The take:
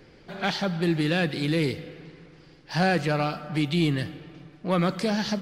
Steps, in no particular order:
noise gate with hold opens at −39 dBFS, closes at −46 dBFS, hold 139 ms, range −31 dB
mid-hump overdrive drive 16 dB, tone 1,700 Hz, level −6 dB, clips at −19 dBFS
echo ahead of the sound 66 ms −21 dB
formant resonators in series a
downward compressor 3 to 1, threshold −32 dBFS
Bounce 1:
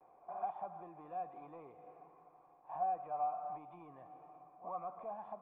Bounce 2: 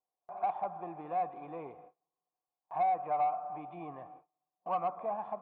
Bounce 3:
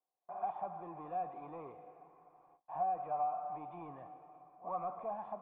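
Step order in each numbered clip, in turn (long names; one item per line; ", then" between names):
echo ahead of the sound, then downward compressor, then mid-hump overdrive, then noise gate with hold, then formant resonators in series
formant resonators in series, then downward compressor, then mid-hump overdrive, then echo ahead of the sound, then noise gate with hold
echo ahead of the sound, then noise gate with hold, then mid-hump overdrive, then formant resonators in series, then downward compressor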